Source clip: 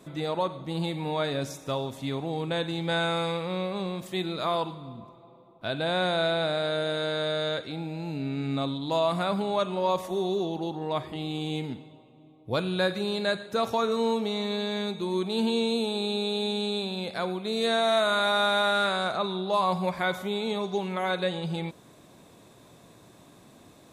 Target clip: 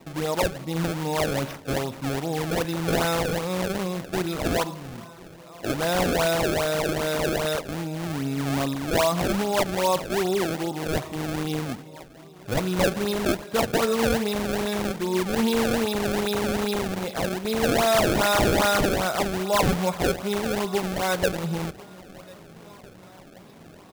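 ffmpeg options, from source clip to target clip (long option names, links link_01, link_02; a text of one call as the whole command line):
ffmpeg -i in.wav -af "aecho=1:1:1052|2104|3156|4208:0.075|0.0442|0.0261|0.0154,acrusher=samples=26:mix=1:aa=0.000001:lfo=1:lforange=41.6:lforate=2.5,volume=3.5dB" out.wav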